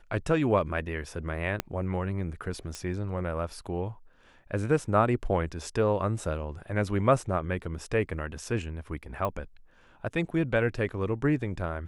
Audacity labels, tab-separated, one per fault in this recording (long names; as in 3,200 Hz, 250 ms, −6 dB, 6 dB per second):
1.600000	1.600000	click −12 dBFS
2.750000	2.750000	click −21 dBFS
9.250000	9.250000	click −18 dBFS